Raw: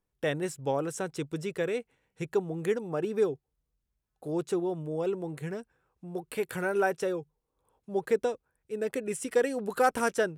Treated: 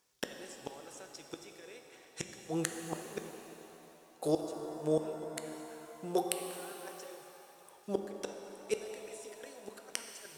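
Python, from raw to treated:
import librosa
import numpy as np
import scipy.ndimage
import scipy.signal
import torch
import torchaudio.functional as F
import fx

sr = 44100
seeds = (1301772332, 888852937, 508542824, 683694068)

y = fx.highpass(x, sr, hz=700.0, slope=6)
y = fx.peak_eq(y, sr, hz=5700.0, db=9.5, octaves=1.4)
y = fx.over_compress(y, sr, threshold_db=-33.0, ratio=-0.5)
y = fx.gate_flip(y, sr, shuts_db=-28.0, range_db=-28)
y = fx.rev_shimmer(y, sr, seeds[0], rt60_s=3.1, semitones=7, shimmer_db=-8, drr_db=5.0)
y = F.gain(torch.from_numpy(y), 9.0).numpy()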